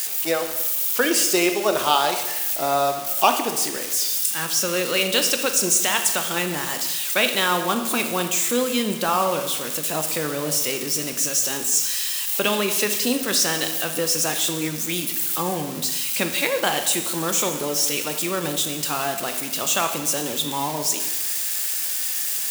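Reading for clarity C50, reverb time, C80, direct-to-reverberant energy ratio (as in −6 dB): 8.0 dB, 1.1 s, 10.0 dB, 6.0 dB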